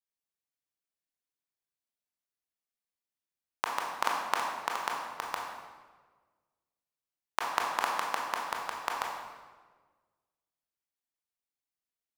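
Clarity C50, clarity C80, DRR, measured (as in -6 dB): 2.0 dB, 4.0 dB, -1.5 dB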